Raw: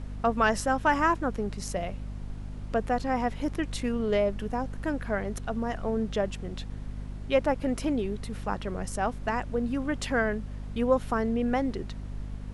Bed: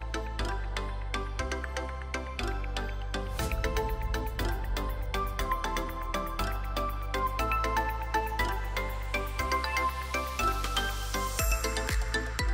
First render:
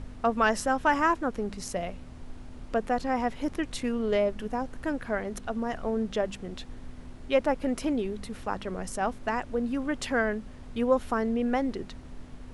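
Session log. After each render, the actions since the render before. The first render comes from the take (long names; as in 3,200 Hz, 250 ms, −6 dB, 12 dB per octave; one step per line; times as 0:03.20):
hum removal 50 Hz, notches 4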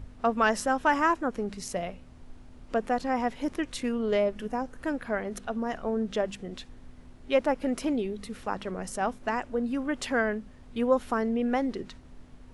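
noise reduction from a noise print 6 dB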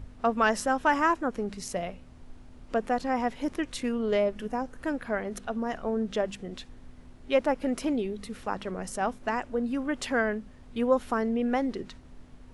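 no processing that can be heard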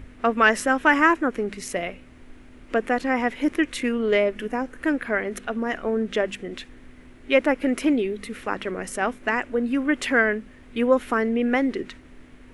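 drawn EQ curve 180 Hz 0 dB, 310 Hz +9 dB, 840 Hz +1 dB, 2,100 Hz +13 dB, 4,800 Hz +1 dB, 11,000 Hz +6 dB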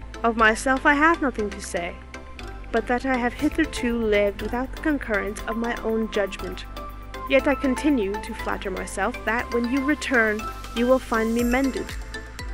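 mix in bed −4 dB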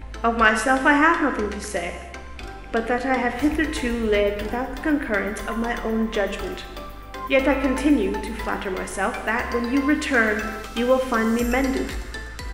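double-tracking delay 14 ms −14 dB
reverb whose tail is shaped and stops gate 430 ms falling, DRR 5.5 dB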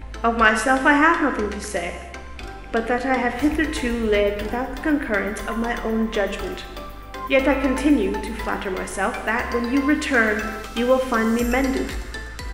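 level +1 dB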